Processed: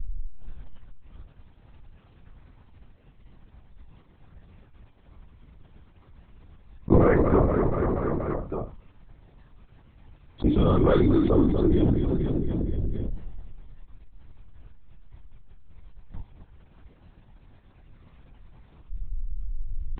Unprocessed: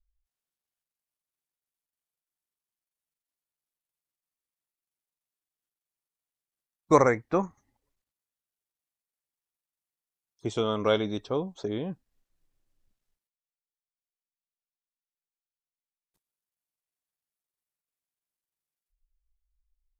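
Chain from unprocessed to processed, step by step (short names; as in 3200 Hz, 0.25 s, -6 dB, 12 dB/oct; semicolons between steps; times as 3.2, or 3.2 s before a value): tilt -4.5 dB/oct; in parallel at -9 dB: soft clip -13.5 dBFS, distortion -11 dB; on the sum: resonator 300 Hz, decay 0.23 s, harmonics all, mix 90%; on a send: feedback echo 0.239 s, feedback 51%, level -14 dB; on the sum: LPC vocoder at 8 kHz whisper; fast leveller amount 70%; gain +2.5 dB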